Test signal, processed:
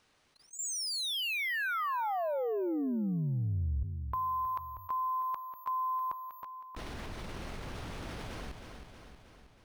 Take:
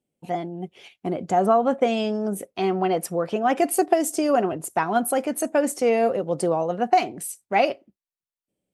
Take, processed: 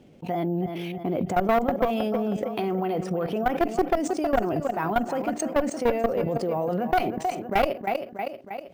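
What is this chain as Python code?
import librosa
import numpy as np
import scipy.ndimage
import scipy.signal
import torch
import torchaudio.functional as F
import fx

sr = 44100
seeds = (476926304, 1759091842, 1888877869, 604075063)

p1 = np.repeat(scipy.signal.resample_poly(x, 1, 3), 3)[:len(x)]
p2 = fx.level_steps(p1, sr, step_db=18)
p3 = fx.low_shelf(p2, sr, hz=220.0, db=3.0)
p4 = p3 + fx.echo_feedback(p3, sr, ms=317, feedback_pct=36, wet_db=-13.0, dry=0)
p5 = fx.clip_asym(p4, sr, top_db=-28.0, bottom_db=-13.0)
p6 = fx.lowpass(p5, sr, hz=3500.0, slope=6)
p7 = fx.env_flatten(p6, sr, amount_pct=50)
y = p7 * librosa.db_to_amplitude(1.5)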